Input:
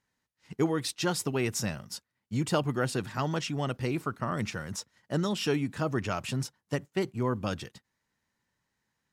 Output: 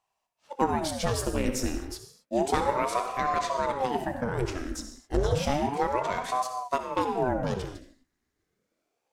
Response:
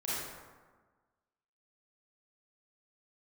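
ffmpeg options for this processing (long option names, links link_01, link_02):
-filter_complex "[0:a]bass=frequency=250:gain=9,treble=frequency=4000:gain=3,aeval=exprs='0.299*(cos(1*acos(clip(val(0)/0.299,-1,1)))-cos(1*PI/2))+0.0531*(cos(2*acos(clip(val(0)/0.299,-1,1)))-cos(2*PI/2))+0.00531*(cos(7*acos(clip(val(0)/0.299,-1,1)))-cos(7*PI/2))+0.00266*(cos(8*acos(clip(val(0)/0.299,-1,1)))-cos(8*PI/2))':channel_layout=same,asplit=2[link_01][link_02];[1:a]atrim=start_sample=2205,afade=type=out:start_time=0.29:duration=0.01,atrim=end_sample=13230,adelay=26[link_03];[link_02][link_03]afir=irnorm=-1:irlink=0,volume=-9.5dB[link_04];[link_01][link_04]amix=inputs=2:normalize=0,aeval=exprs='val(0)*sin(2*PI*510*n/s+510*0.75/0.31*sin(2*PI*0.31*n/s))':channel_layout=same"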